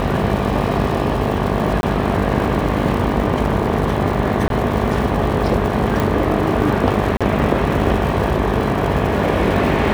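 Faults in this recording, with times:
mains buzz 50 Hz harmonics 24 −22 dBFS
surface crackle 200 per second −25 dBFS
0:01.81–0:01.83: drop-out 21 ms
0:04.48–0:04.50: drop-out 22 ms
0:06.00: click
0:07.17–0:07.21: drop-out 36 ms

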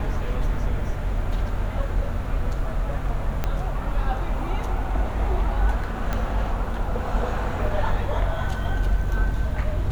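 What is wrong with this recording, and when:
0:03.44: click −11 dBFS
0:06.13: click −13 dBFS

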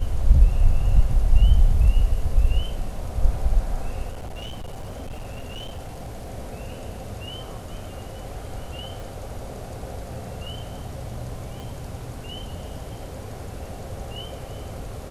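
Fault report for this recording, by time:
0:04.12–0:06.32: clipping −30 dBFS
0:09.00: click
0:11.60: click

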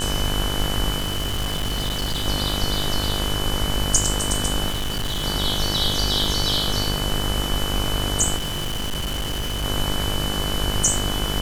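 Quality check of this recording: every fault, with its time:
mains buzz 50 Hz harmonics 35 −27 dBFS
surface crackle 420 per second −31 dBFS
whistle 3,000 Hz −28 dBFS
0:00.97–0:02.27: clipping −20.5 dBFS
0:04.69–0:05.24: clipping −21.5 dBFS
0:08.36–0:09.65: clipping −22.5 dBFS

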